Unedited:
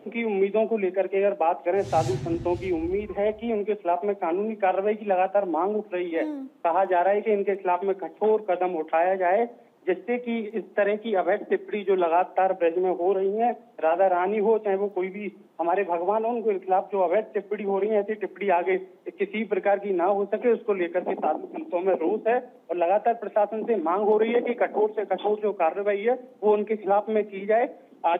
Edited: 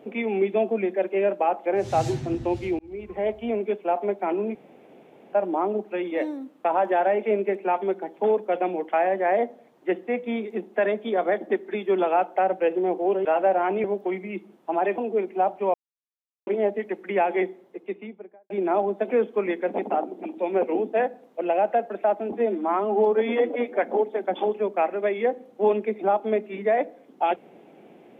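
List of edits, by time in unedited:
2.79–3.49 fade in equal-power
4.55–5.33 room tone
13.25–13.81 cut
14.4–14.75 cut
15.89–16.3 cut
17.06–17.79 mute
18.73–19.82 studio fade out
23.64–24.62 stretch 1.5×

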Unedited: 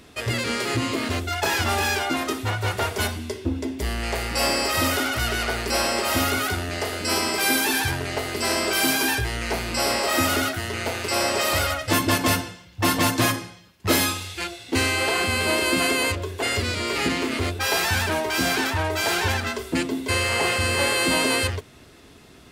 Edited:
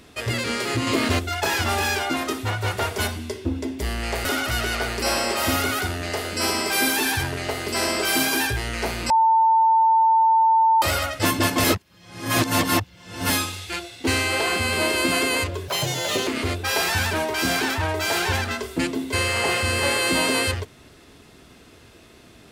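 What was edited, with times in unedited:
0.87–1.19 gain +4.5 dB
4.25–4.93 cut
9.78–11.5 bleep 895 Hz -13.5 dBFS
12.32–13.98 reverse
16.36–17.23 speed 147%

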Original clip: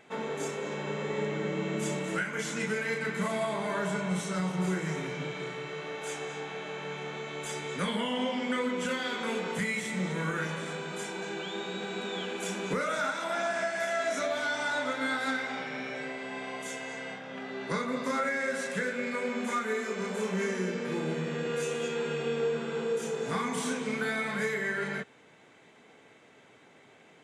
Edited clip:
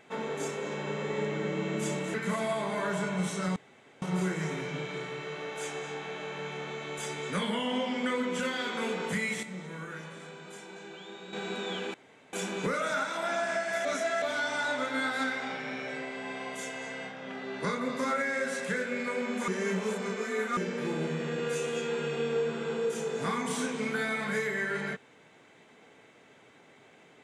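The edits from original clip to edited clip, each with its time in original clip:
2.14–3.06 cut
4.48 insert room tone 0.46 s
9.89–11.79 gain -9 dB
12.4 insert room tone 0.39 s
13.92–14.29 reverse
19.55–20.64 reverse

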